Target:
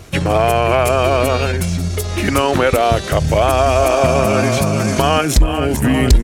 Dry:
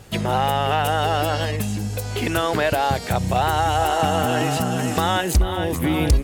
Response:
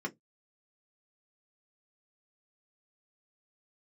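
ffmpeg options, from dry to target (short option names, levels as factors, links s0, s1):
-af "asetrate=37084,aresample=44100,atempo=1.18921,volume=2.11"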